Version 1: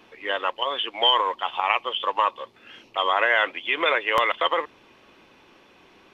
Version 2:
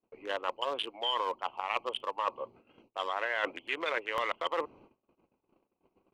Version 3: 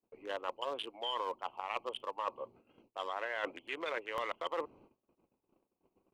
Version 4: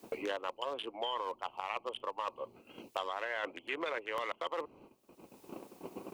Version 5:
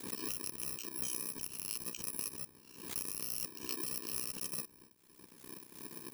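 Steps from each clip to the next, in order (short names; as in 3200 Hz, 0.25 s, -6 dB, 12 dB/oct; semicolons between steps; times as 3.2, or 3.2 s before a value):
Wiener smoothing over 25 samples; gate -54 dBFS, range -35 dB; reverse; compressor, threshold -29 dBFS, peak gain reduction 13 dB; reverse
bell 2300 Hz -4 dB 2.6 oct; gain -3 dB
three-band squash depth 100%
FFT order left unsorted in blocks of 64 samples; ring modulator 32 Hz; backwards sustainer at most 79 dB/s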